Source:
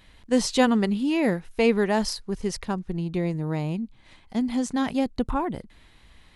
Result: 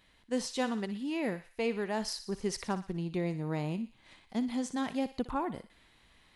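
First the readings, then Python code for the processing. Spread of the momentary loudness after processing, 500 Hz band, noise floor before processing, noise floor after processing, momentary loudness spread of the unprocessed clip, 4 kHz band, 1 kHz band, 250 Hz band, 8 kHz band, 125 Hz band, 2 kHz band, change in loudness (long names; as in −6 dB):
3 LU, −9.5 dB, −55 dBFS, −65 dBFS, 10 LU, −8.0 dB, −8.0 dB, −9.5 dB, −7.5 dB, −8.5 dB, −9.0 dB, −9.5 dB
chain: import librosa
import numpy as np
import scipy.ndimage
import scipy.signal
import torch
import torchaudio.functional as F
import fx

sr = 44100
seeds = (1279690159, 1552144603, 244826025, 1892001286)

p1 = fx.low_shelf(x, sr, hz=110.0, db=-10.0)
p2 = fx.rider(p1, sr, range_db=4, speed_s=0.5)
p3 = p2 + fx.echo_thinned(p2, sr, ms=60, feedback_pct=58, hz=1000.0, wet_db=-11.5, dry=0)
y = F.gain(torch.from_numpy(p3), -8.0).numpy()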